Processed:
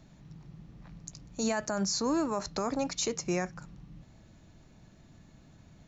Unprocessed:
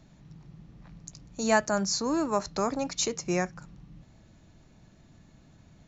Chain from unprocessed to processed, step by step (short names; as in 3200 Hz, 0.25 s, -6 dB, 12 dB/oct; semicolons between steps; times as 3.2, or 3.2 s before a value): limiter -21 dBFS, peak gain reduction 12 dB